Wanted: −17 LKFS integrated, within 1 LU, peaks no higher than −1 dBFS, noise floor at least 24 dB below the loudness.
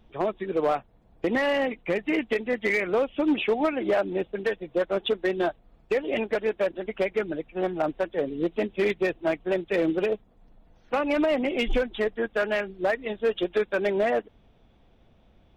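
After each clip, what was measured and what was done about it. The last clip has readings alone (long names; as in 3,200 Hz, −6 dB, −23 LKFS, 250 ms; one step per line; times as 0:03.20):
share of clipped samples 1.3%; peaks flattened at −17.5 dBFS; integrated loudness −27.0 LKFS; sample peak −17.5 dBFS; target loudness −17.0 LKFS
→ clipped peaks rebuilt −17.5 dBFS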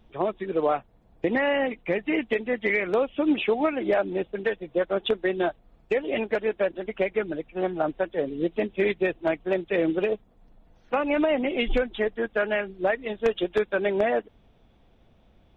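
share of clipped samples 0.0%; integrated loudness −26.5 LKFS; sample peak −8.5 dBFS; target loudness −17.0 LKFS
→ level +9.5 dB
brickwall limiter −1 dBFS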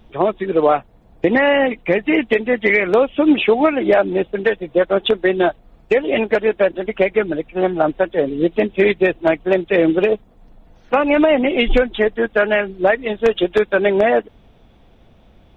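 integrated loudness −17.0 LKFS; sample peak −1.0 dBFS; background noise floor −50 dBFS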